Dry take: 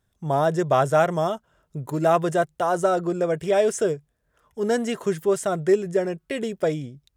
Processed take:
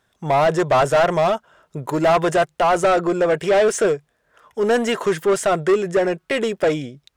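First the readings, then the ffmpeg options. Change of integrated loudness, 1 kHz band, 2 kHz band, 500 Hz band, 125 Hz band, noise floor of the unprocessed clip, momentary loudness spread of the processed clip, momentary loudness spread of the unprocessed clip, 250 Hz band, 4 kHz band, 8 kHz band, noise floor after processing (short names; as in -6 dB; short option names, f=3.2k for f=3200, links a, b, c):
+4.5 dB, +5.0 dB, +8.0 dB, +4.5 dB, +1.0 dB, -72 dBFS, 9 LU, 10 LU, +3.0 dB, +8.5 dB, +5.0 dB, -69 dBFS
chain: -filter_complex "[0:a]asplit=2[a][b];[b]highpass=f=720:p=1,volume=21dB,asoftclip=type=tanh:threshold=-7dB[c];[a][c]amix=inputs=2:normalize=0,lowpass=f=3.3k:p=1,volume=-6dB,volume=-1dB"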